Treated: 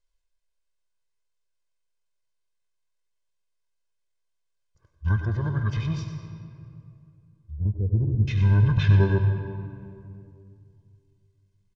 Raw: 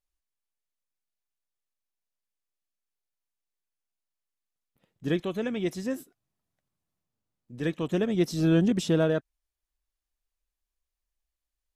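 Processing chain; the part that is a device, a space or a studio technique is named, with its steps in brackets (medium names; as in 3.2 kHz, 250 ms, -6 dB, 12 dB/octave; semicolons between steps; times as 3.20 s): comb 1.2 ms, depth 96%; 7.56–8.28 s: inverse Chebyshev low-pass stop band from 4.3 kHz, stop band 70 dB; monster voice (pitch shift -8.5 st; formant shift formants -4.5 st; bass shelf 150 Hz +6 dB; delay 97 ms -12 dB; reverberation RT60 2.5 s, pre-delay 83 ms, DRR 7 dB)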